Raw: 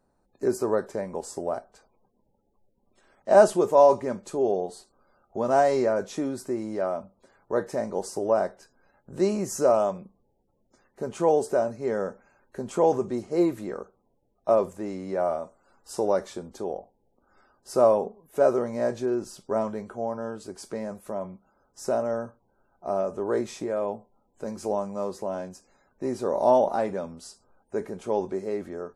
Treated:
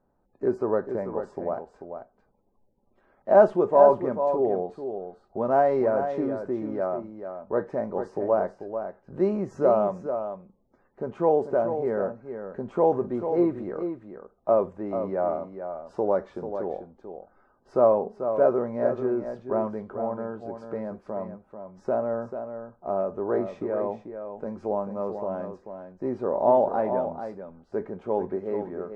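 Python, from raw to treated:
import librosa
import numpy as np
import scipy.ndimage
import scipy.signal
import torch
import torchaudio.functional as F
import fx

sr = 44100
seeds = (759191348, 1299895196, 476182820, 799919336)

p1 = scipy.signal.sosfilt(scipy.signal.butter(2, 1600.0, 'lowpass', fs=sr, output='sos'), x)
y = p1 + fx.echo_single(p1, sr, ms=440, db=-8.5, dry=0)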